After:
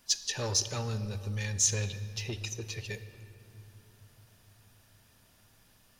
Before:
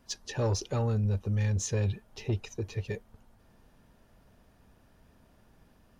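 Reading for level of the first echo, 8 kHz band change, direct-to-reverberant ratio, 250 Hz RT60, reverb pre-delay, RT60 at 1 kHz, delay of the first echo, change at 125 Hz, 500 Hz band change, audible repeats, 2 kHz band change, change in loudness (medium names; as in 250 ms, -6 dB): no echo, +10.0 dB, 11.0 dB, 4.7 s, 5 ms, 2.6 s, no echo, -6.0 dB, -5.5 dB, no echo, +3.5 dB, 0.0 dB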